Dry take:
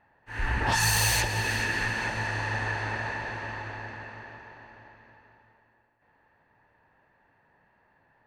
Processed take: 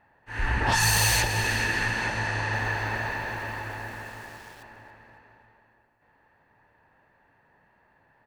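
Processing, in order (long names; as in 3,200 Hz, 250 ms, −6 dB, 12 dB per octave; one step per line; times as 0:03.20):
0:02.53–0:04.63: centre clipping without the shift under −47.5 dBFS
echo with shifted repeats 276 ms, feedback 37%, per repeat −61 Hz, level −16 dB
level +2 dB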